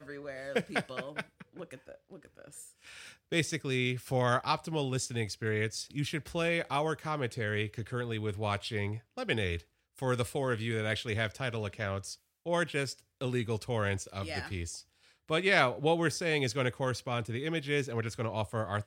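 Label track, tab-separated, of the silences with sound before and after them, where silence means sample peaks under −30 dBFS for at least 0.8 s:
1.200000	3.320000	silence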